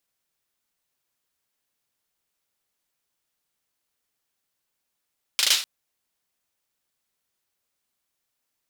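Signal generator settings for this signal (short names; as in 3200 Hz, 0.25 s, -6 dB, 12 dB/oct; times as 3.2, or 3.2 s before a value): hand clap length 0.25 s, apart 38 ms, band 3700 Hz, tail 0.38 s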